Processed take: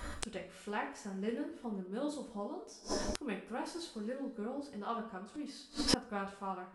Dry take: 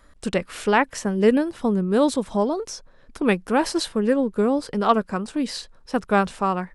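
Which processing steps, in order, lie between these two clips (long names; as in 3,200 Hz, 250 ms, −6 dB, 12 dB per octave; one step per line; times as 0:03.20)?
coupled-rooms reverb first 0.42 s, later 1.7 s, from −18 dB, DRR −1 dB
gate with flip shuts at −23 dBFS, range −32 dB
level +9.5 dB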